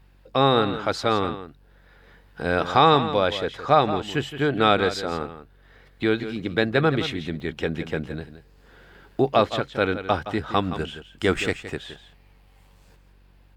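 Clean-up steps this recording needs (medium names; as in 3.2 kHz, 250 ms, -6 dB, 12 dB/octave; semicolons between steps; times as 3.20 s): de-hum 47.2 Hz, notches 8; interpolate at 7.40 s, 1.2 ms; inverse comb 169 ms -12 dB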